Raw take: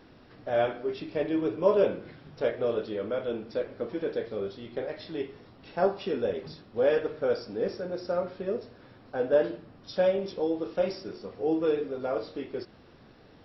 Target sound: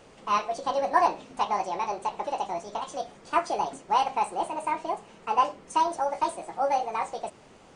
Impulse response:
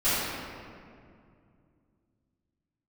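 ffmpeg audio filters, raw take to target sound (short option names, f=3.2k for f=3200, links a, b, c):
-af "asetrate=76440,aresample=44100,volume=1.5dB"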